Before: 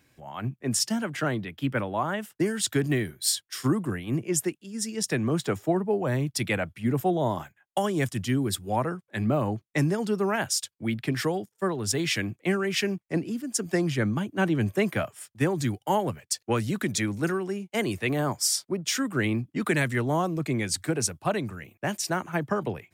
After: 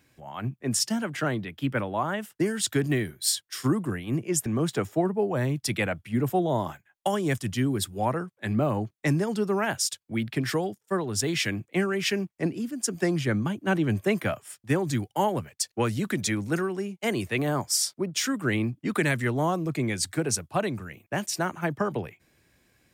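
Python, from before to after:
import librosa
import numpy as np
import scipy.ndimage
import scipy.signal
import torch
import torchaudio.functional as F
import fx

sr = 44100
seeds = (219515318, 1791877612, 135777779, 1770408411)

y = fx.edit(x, sr, fx.cut(start_s=4.46, length_s=0.71), tone=tone)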